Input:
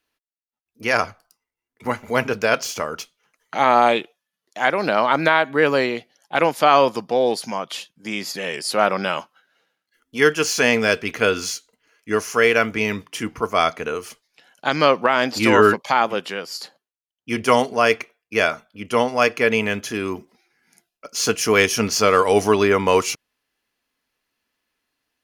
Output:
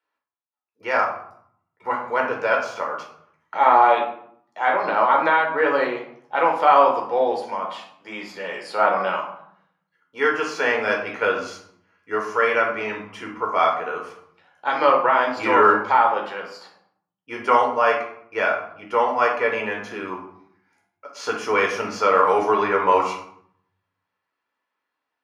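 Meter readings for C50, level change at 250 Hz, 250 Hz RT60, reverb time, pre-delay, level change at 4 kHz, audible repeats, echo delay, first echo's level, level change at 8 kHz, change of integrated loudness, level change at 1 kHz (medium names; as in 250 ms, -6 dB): 6.0 dB, -8.0 dB, 1.0 s, 0.65 s, 10 ms, -10.0 dB, no echo, no echo, no echo, under -15 dB, -1.0 dB, +2.0 dB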